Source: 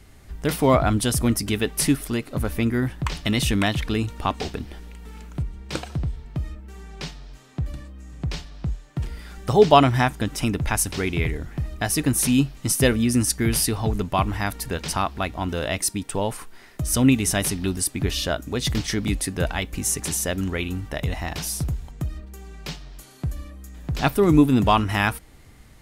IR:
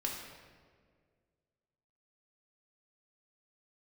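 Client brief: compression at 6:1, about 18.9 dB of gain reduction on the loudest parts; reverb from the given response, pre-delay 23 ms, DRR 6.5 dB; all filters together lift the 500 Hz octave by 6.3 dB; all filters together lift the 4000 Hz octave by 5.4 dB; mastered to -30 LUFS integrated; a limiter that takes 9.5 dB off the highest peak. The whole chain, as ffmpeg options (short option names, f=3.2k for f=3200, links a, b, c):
-filter_complex "[0:a]equalizer=f=500:t=o:g=8,equalizer=f=4k:t=o:g=7,acompressor=threshold=-25dB:ratio=6,alimiter=limit=-20.5dB:level=0:latency=1,asplit=2[a][b];[1:a]atrim=start_sample=2205,adelay=23[c];[b][c]afir=irnorm=-1:irlink=0,volume=-9dB[d];[a][d]amix=inputs=2:normalize=0,volume=1dB"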